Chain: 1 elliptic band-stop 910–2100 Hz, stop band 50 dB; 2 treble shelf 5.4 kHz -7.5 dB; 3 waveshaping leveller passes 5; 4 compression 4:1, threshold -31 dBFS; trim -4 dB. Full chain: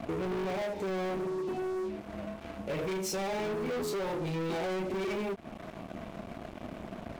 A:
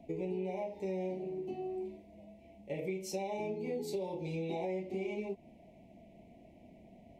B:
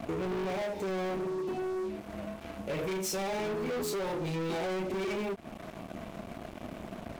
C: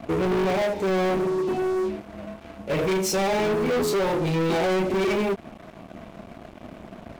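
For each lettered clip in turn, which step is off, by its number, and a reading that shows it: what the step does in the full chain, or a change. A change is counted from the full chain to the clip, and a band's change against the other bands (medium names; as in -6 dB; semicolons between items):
3, crest factor change +4.0 dB; 2, 8 kHz band +2.0 dB; 4, mean gain reduction 7.0 dB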